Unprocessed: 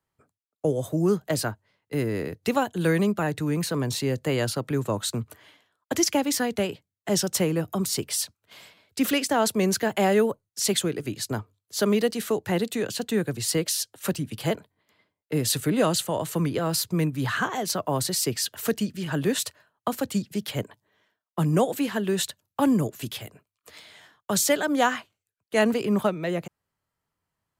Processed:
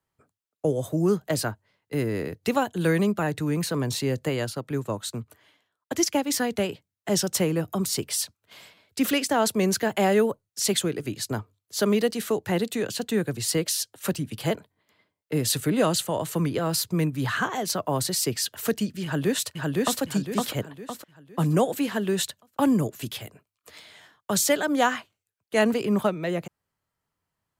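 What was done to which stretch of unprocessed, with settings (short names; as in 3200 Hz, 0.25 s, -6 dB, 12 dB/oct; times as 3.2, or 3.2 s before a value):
4.29–6.3 upward expander, over -32 dBFS
19.04–20.01 echo throw 0.51 s, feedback 40%, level -1 dB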